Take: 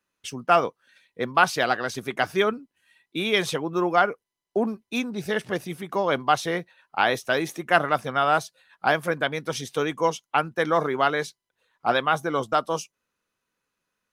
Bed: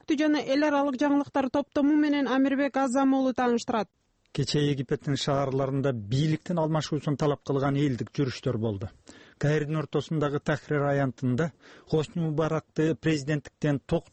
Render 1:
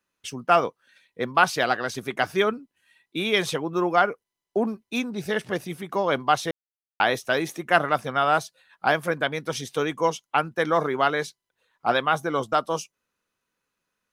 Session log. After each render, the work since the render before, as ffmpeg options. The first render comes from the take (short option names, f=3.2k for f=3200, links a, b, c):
-filter_complex "[0:a]asplit=3[a][b][c];[a]atrim=end=6.51,asetpts=PTS-STARTPTS,afade=t=out:st=6.506:d=0.004:c=hsin[d];[b]atrim=start=6.51:end=7,asetpts=PTS-STARTPTS,volume=0[e];[c]atrim=start=7,asetpts=PTS-STARTPTS,afade=t=in:d=0.004:c=hsin[f];[d][e][f]concat=n=3:v=0:a=1"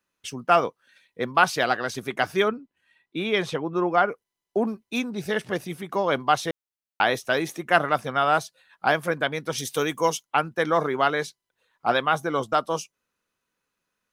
-filter_complex "[0:a]asettb=1/sr,asplit=3[a][b][c];[a]atrim=end=2.484[d];[b]atrim=start=2.48:end=4.09,asetpts=PTS-STARTPTS,afade=t=in:d=0.004:c=qsin,afade=t=out:st=1.606:d=0.004:c=qsin,lowpass=f=2.5k:p=1[e];[c]atrim=start=4.086[f];[d][e]acrossfade=d=0.004:c1=hsin:c2=qsin[g];[g][f]acrossfade=d=0.004:c1=qsin:c2=hsin,asettb=1/sr,asplit=3[h][i][j];[h]atrim=end=9.584[k];[i]atrim=start=9.58:end=10.23,asetpts=PTS-STARTPTS,afade=t=in:d=0.004:c=qsin,afade=t=out:st=0.646:d=0.004:c=qsin,aemphasis=mode=production:type=50kf[l];[j]atrim=start=10.226[m];[k][l]acrossfade=d=0.004:c1=hsin:c2=qsin[n];[n][m]acrossfade=d=0.004:c1=qsin:c2=hsin"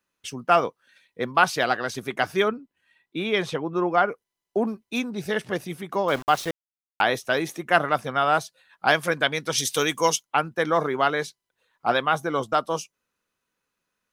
-filter_complex "[0:a]asettb=1/sr,asplit=3[a][b][c];[a]atrim=end=6.084[d];[b]atrim=start=6.08:end=7.01,asetpts=PTS-STARTPTS,afade=t=in:d=0.004:c=qsin,afade=t=out:st=0.926:d=0.004:c=qsin,aeval=exprs='val(0)*gte(abs(val(0)),0.0211)':c=same[e];[c]atrim=start=7.006[f];[d][e]acrossfade=d=0.004:c1=hsin:c2=qsin[g];[g][f]acrossfade=d=0.004:c1=qsin:c2=hsin,asettb=1/sr,asplit=3[h][i][j];[h]atrim=end=8.884[k];[i]atrim=start=8.88:end=10.16,asetpts=PTS-STARTPTS,afade=t=in:d=0.004:c=qsin,afade=t=out:st=1.276:d=0.004:c=qsin,equalizer=f=5.4k:w=0.37:g=7.5[l];[j]atrim=start=10.156[m];[k][l]acrossfade=d=0.004:c1=hsin:c2=qsin[n];[n][m]acrossfade=d=0.004:c1=qsin:c2=hsin"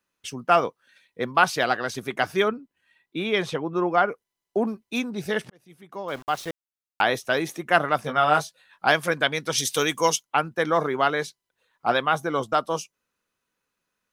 -filter_complex "[0:a]asettb=1/sr,asplit=3[a][b][c];[a]atrim=end=8.024[d];[b]atrim=start=8.02:end=8.87,asetpts=PTS-STARTPTS,afade=t=in:d=0.004:c=qsin,afade=t=out:st=0.846:d=0.004:c=qsin,asplit=2[e][f];[f]adelay=20,volume=-5dB[g];[e][g]amix=inputs=2:normalize=0,atrim=end_sample=37485[h];[c]atrim=start=8.866[i];[d][h]acrossfade=d=0.004:c1=hsin:c2=qsin[j];[j][i]acrossfade=d=0.004:c1=qsin:c2=hsin,asplit=2[k][l];[k]atrim=end=5.5,asetpts=PTS-STARTPTS,afade=t=out:st=5.496:d=0.004:c=hsin[m];[l]atrim=start=5.5,asetpts=PTS-STARTPTS,afade=t=in:d=1.53[n];[m][n]concat=n=2:v=0:a=1"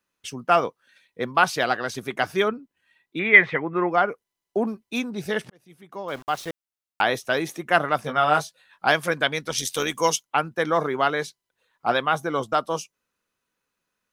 -filter_complex "[0:a]asettb=1/sr,asplit=3[a][b][c];[a]atrim=end=3.194[d];[b]atrim=start=3.19:end=3.9,asetpts=PTS-STARTPTS,afade=t=in:d=0.004:c=qsin,afade=t=out:st=0.706:d=0.004:c=qsin,lowpass=f=2k:t=q:w=9.9[e];[c]atrim=start=3.896[f];[d][e]acrossfade=d=0.004:c1=hsin:c2=qsin[g];[g][f]acrossfade=d=0.004:c1=qsin:c2=hsin,asplit=3[h][i][j];[h]afade=t=out:st=9.41:d=0.02[k];[i]tremolo=f=88:d=0.519,afade=t=in:st=9.41:d=0.02,afade=t=out:st=9.94:d=0.02[l];[j]afade=t=in:st=9.94:d=0.02[m];[k][l][m]amix=inputs=3:normalize=0"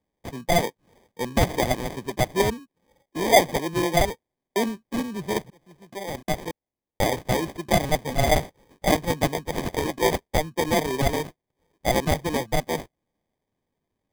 -filter_complex "[0:a]acrossover=split=230[a][b];[b]acrusher=samples=32:mix=1:aa=0.000001[c];[a][c]amix=inputs=2:normalize=0,volume=9.5dB,asoftclip=hard,volume=-9.5dB"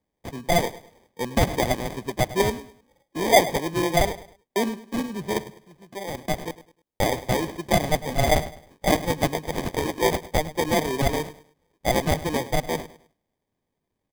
-af "aecho=1:1:103|206|309:0.158|0.0507|0.0162"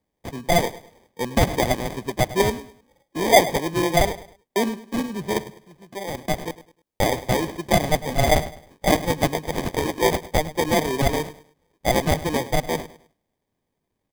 -af "volume=2dB"